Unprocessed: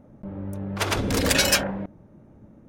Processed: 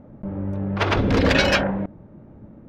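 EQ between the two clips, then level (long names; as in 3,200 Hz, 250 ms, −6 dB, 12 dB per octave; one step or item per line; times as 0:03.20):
high-frequency loss of the air 250 metres
+6.0 dB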